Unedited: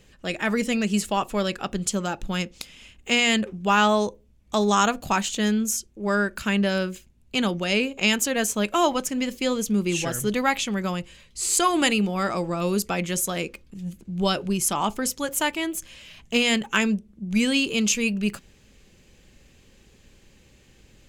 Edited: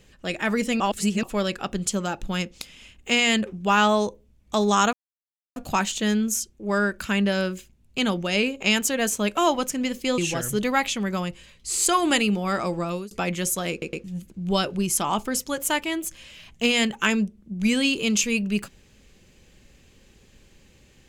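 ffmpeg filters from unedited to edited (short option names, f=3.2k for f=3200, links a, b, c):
-filter_complex "[0:a]asplit=9[a][b][c][d][e][f][g][h][i];[a]atrim=end=0.802[j];[b]atrim=start=0.798:end=1.232,asetpts=PTS-STARTPTS,areverse[k];[c]atrim=start=1.228:end=4.93,asetpts=PTS-STARTPTS,afade=t=out:st=3.698:d=0.004:c=hsin,apad=pad_dur=0.63[l];[d]atrim=start=4.93:end=9.552,asetpts=PTS-STARTPTS,afade=t=in:d=0.004:c=hsin[m];[e]atrim=start=9.888:end=12.82,asetpts=PTS-STARTPTS,afade=t=out:st=2.662:d=0.27[n];[f]atrim=start=12.82:end=13.532,asetpts=PTS-STARTPTS,afade=t=in:d=0.004:c=hsin[o];[g]atrim=start=13.418:end=13.532[p];[h]atrim=start=13.418:end=13.532[q];[i]atrim=start=13.748[r];[j][k]acrossfade=d=0.004:c1=hsin:c2=hsin[s];[l][m]concat=n=2:v=0:a=1[t];[s][t]acrossfade=d=0.004:c1=hsin:c2=hsin[u];[n][o]concat=n=2:v=0:a=1[v];[u][v]acrossfade=d=0.004:c1=hsin:c2=hsin[w];[w][p]acrossfade=d=0.004:c1=hsin:c2=hsin[x];[x][q]acrossfade=d=0.004:c1=hsin:c2=hsin[y];[y][r]acrossfade=d=0.004:c1=hsin:c2=hsin"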